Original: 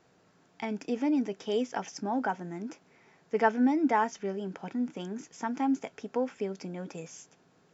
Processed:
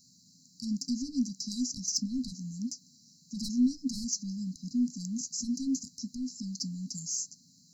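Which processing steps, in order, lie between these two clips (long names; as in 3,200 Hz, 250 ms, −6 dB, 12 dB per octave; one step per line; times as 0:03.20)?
high-shelf EQ 6,200 Hz +8.5 dB
mid-hump overdrive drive 20 dB, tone 5,900 Hz, clips at −13 dBFS
linear-phase brick-wall band-stop 270–3,900 Hz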